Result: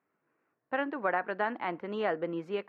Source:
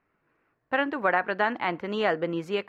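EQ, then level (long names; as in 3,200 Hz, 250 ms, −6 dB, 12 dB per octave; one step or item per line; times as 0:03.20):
high-pass filter 170 Hz 12 dB per octave
low-pass filter 1,700 Hz 6 dB per octave
−4.5 dB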